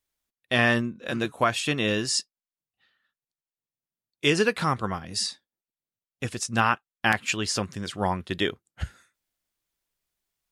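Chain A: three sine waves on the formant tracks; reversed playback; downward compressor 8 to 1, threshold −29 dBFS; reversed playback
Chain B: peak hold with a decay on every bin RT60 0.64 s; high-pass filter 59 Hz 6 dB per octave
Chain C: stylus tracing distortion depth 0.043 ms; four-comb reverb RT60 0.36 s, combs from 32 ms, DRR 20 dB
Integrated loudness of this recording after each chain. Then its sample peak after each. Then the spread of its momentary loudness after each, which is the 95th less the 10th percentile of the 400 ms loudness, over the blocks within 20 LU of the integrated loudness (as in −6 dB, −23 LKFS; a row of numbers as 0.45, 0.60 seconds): −34.0, −24.0, −26.0 LKFS; −19.5, −5.0, −7.5 dBFS; 13, 12, 10 LU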